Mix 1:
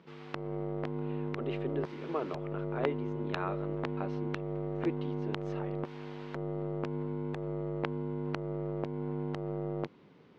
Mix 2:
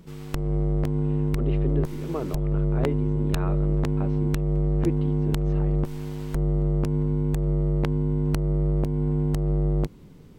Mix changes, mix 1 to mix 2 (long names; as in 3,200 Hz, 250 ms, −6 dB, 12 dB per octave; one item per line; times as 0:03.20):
background: remove high-frequency loss of the air 250 metres
master: remove meter weighting curve A